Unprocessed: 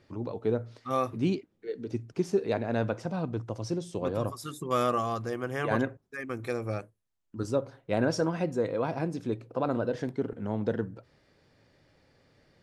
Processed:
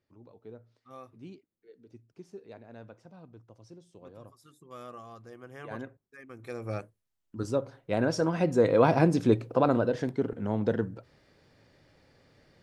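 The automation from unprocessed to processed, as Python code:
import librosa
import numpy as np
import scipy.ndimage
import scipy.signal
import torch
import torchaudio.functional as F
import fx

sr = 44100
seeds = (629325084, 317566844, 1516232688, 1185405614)

y = fx.gain(x, sr, db=fx.line((4.68, -19.0), (5.75, -12.0), (6.33, -12.0), (6.76, -0.5), (8.16, -0.5), (8.81, 9.0), (9.34, 9.0), (9.94, 2.0)))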